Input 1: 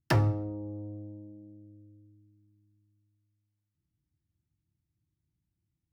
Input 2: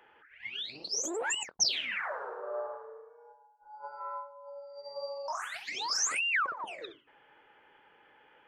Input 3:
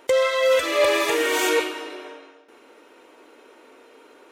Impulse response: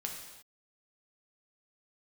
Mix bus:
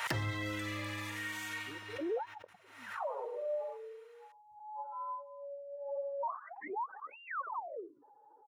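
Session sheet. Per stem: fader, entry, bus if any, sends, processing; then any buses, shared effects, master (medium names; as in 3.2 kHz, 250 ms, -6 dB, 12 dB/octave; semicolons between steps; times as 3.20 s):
-3.0 dB, 0.00 s, no send, gate -56 dBFS, range -16 dB; compression, threshold -31 dBFS, peak gain reduction 10.5 dB
+0.5 dB, 0.95 s, no send, spectral contrast enhancement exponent 2.3; steep low-pass 1.1 kHz 48 dB/octave
-14.0 dB, 0.00 s, no send, high-pass 900 Hz 24 dB/octave; peak limiter -21.5 dBFS, peak gain reduction 10 dB; modulation noise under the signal 27 dB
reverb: none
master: peaking EQ 1.9 kHz +7.5 dB 0.22 oct; swell ahead of each attack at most 67 dB/s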